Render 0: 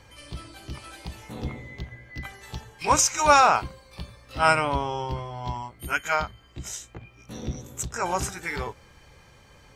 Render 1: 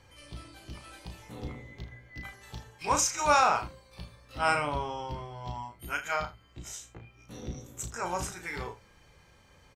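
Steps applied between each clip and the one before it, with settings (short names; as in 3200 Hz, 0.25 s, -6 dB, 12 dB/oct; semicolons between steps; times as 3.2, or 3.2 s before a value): early reflections 34 ms -6.5 dB, 78 ms -16 dB; gain -7 dB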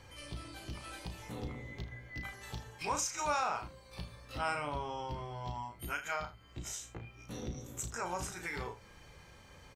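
compressor 2:1, threshold -44 dBFS, peak gain reduction 14 dB; gain +3 dB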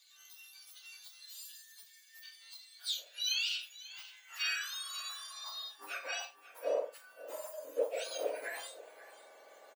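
spectrum mirrored in octaves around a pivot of 1900 Hz; high-pass sweep 3900 Hz -> 570 Hz, 3.04–6.54; echo 0.539 s -17 dB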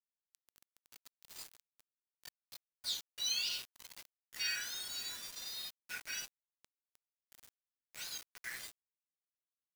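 rippled Chebyshev high-pass 1400 Hz, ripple 9 dB; bit-crush 8-bit; gain +3 dB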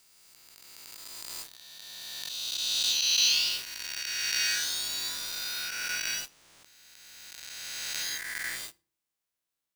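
spectral swells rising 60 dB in 2.94 s; reverb RT60 0.40 s, pre-delay 3 ms, DRR 15.5 dB; gain +5 dB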